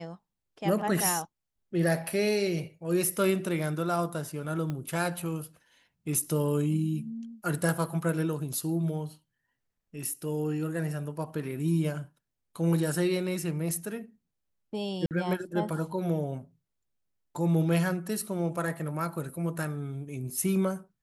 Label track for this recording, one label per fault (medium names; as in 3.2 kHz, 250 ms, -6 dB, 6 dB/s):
4.700000	4.700000	pop -22 dBFS
15.060000	15.110000	dropout 48 ms